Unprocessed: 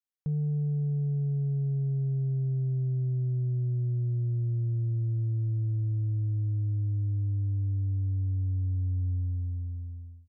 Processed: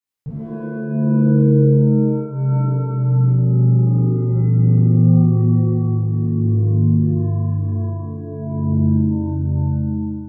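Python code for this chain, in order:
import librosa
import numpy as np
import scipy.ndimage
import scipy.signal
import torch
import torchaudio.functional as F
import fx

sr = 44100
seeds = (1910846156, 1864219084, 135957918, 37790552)

y = fx.rev_shimmer(x, sr, seeds[0], rt60_s=1.1, semitones=7, shimmer_db=-2, drr_db=-9.5)
y = F.gain(torch.from_numpy(y), -1.0).numpy()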